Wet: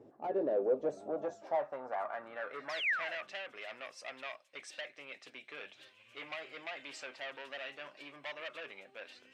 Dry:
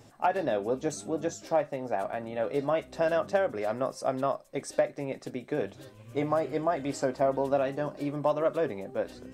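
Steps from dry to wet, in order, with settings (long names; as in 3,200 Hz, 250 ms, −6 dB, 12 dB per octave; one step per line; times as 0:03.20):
sound drawn into the spectrogram fall, 0:02.69–0:03.16, 520–5,700 Hz −33 dBFS
soft clipping −28 dBFS, distortion −8 dB
band-pass filter sweep 390 Hz → 2,700 Hz, 0:00.30–0:03.39
level +5 dB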